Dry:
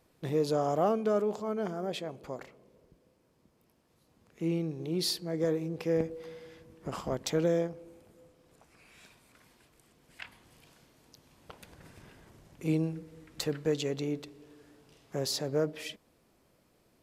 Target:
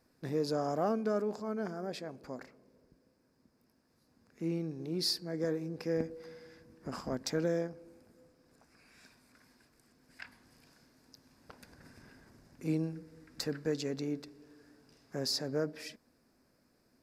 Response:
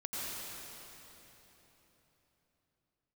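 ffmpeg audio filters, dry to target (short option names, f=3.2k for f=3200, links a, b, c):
-af "equalizer=f=250:t=o:w=0.33:g=9,equalizer=f=1.6k:t=o:w=0.33:g=7,equalizer=f=3.15k:t=o:w=0.33:g=-9,equalizer=f=5k:t=o:w=0.33:g=9,volume=-5dB"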